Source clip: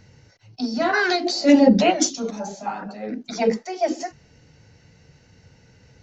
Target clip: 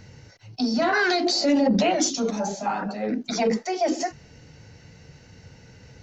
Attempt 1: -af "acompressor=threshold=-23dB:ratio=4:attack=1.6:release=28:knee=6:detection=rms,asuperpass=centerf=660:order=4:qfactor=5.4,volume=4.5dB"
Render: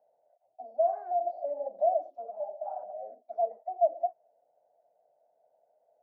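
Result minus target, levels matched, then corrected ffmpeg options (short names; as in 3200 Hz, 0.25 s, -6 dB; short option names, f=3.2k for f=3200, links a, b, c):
500 Hz band +4.0 dB
-af "acompressor=threshold=-23dB:ratio=4:attack=1.6:release=28:knee=6:detection=rms,volume=4.5dB"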